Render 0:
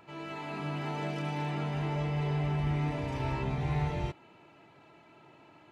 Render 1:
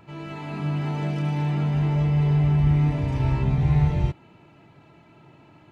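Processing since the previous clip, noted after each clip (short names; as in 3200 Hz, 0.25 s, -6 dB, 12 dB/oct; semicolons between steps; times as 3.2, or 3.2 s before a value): tone controls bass +11 dB, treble 0 dB; gain +2 dB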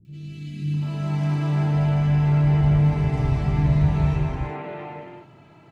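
three bands offset in time lows, highs, mids 50/740 ms, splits 280/2800 Hz; non-linear reverb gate 0.42 s flat, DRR -0.5 dB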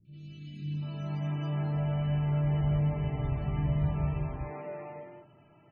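resonator 600 Hz, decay 0.19 s, harmonics all, mix 70%; loudest bins only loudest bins 64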